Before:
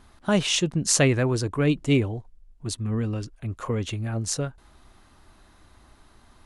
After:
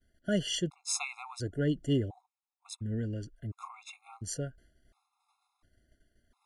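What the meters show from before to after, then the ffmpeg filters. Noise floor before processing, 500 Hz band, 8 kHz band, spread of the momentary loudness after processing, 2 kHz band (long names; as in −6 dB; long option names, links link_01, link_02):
−57 dBFS, −10.5 dB, −11.0 dB, 15 LU, −12.0 dB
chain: -af "agate=range=-33dB:threshold=-46dB:ratio=3:detection=peak,afftfilt=real='re*gt(sin(2*PI*0.71*pts/sr)*(1-2*mod(floor(b*sr/1024/690),2)),0)':imag='im*gt(sin(2*PI*0.71*pts/sr)*(1-2*mod(floor(b*sr/1024/690),2)),0)':win_size=1024:overlap=0.75,volume=-7.5dB"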